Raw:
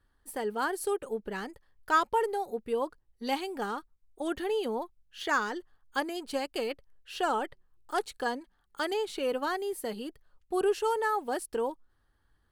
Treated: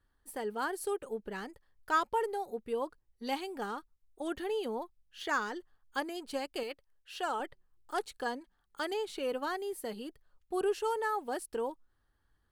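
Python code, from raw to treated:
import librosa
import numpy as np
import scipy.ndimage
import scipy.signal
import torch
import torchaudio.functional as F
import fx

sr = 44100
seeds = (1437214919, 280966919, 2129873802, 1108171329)

y = fx.low_shelf(x, sr, hz=390.0, db=-8.0, at=(6.63, 7.4))
y = y * librosa.db_to_amplitude(-4.0)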